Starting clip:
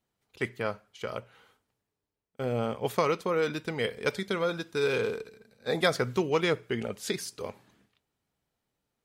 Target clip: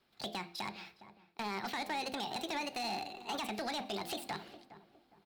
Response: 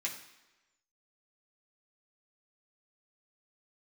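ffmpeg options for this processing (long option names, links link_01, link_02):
-filter_complex "[0:a]highshelf=frequency=3100:width_type=q:width=3:gain=-6.5,bandreject=frequency=50:width_type=h:width=6,bandreject=frequency=100:width_type=h:width=6,bandreject=frequency=150:width_type=h:width=6,bandreject=frequency=200:width_type=h:width=6,bandreject=frequency=250:width_type=h:width=6,bandreject=frequency=300:width_type=h:width=6,bandreject=frequency=350:width_type=h:width=6,bandreject=frequency=400:width_type=h:width=6,bandreject=frequency=450:width_type=h:width=6,asplit=2[link_01][link_02];[link_02]acompressor=threshold=-39dB:ratio=6,volume=2dB[link_03];[link_01][link_03]amix=inputs=2:normalize=0,alimiter=limit=-19dB:level=0:latency=1:release=28,acrossover=split=160|810|4200[link_04][link_05][link_06][link_07];[link_04]acompressor=threshold=-45dB:ratio=4[link_08];[link_05]acompressor=threshold=-42dB:ratio=4[link_09];[link_06]acompressor=threshold=-42dB:ratio=4[link_10];[link_07]acompressor=threshold=-54dB:ratio=4[link_11];[link_08][link_09][link_10][link_11]amix=inputs=4:normalize=0,volume=34dB,asoftclip=hard,volume=-34dB,asetrate=75852,aresample=44100,asplit=2[link_12][link_13];[link_13]adelay=411,lowpass=frequency=1200:poles=1,volume=-13.5dB,asplit=2[link_14][link_15];[link_15]adelay=411,lowpass=frequency=1200:poles=1,volume=0.37,asplit=2[link_16][link_17];[link_17]adelay=411,lowpass=frequency=1200:poles=1,volume=0.37,asplit=2[link_18][link_19];[link_19]adelay=411,lowpass=frequency=1200:poles=1,volume=0.37[link_20];[link_12][link_14][link_16][link_18][link_20]amix=inputs=5:normalize=0,asplit=2[link_21][link_22];[1:a]atrim=start_sample=2205[link_23];[link_22][link_23]afir=irnorm=-1:irlink=0,volume=-15.5dB[link_24];[link_21][link_24]amix=inputs=2:normalize=0,volume=1dB"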